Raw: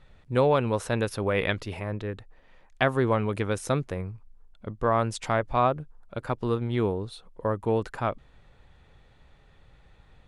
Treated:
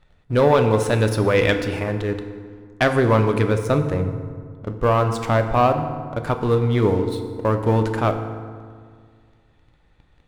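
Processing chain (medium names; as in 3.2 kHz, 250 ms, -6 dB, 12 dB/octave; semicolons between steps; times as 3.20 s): 3.44–6.21 s: treble shelf 2.5 kHz -7.5 dB; waveshaping leveller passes 2; FDN reverb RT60 1.9 s, low-frequency decay 1.2×, high-frequency decay 0.55×, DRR 6 dB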